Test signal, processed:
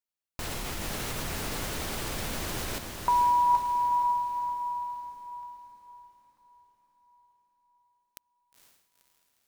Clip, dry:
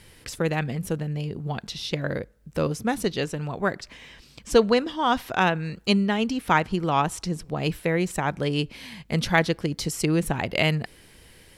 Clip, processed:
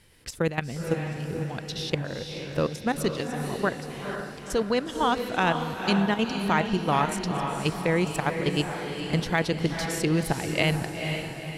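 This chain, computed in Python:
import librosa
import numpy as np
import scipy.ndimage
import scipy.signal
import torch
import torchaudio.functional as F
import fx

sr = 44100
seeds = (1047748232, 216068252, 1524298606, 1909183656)

p1 = fx.level_steps(x, sr, step_db=12)
p2 = p1 + fx.echo_diffused(p1, sr, ms=483, feedback_pct=49, wet_db=-5.5, dry=0)
y = p2 * librosa.db_to_amplitude(1.5)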